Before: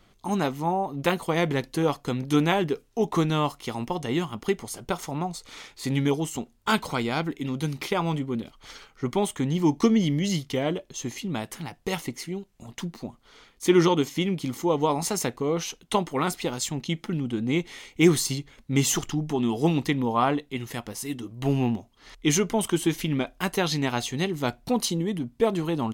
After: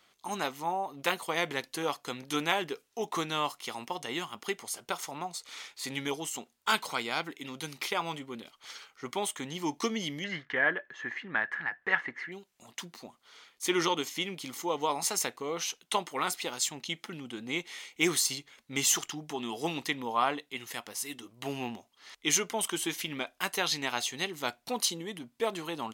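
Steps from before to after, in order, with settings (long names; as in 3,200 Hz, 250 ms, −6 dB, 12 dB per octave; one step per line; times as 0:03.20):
high-pass filter 1,200 Hz 6 dB per octave
hard clipping −11.5 dBFS, distortion −41 dB
0:10.24–0:12.32: low-pass with resonance 1,700 Hz, resonance Q 14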